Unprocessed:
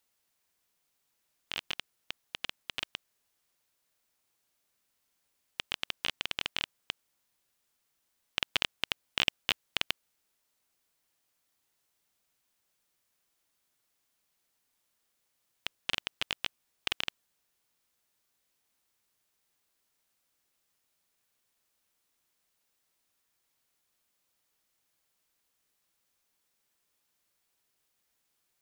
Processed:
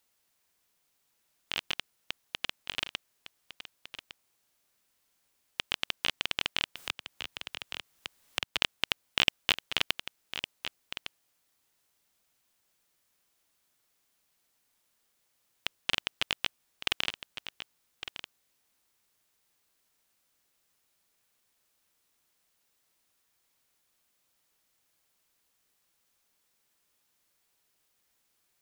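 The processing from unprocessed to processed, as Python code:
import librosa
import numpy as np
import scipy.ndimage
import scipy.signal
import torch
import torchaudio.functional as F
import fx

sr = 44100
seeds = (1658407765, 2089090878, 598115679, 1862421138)

p1 = x + fx.echo_single(x, sr, ms=1158, db=-11.5, dry=0)
p2 = fx.band_squash(p1, sr, depth_pct=70, at=(6.76, 8.62))
y = p2 * librosa.db_to_amplitude(3.0)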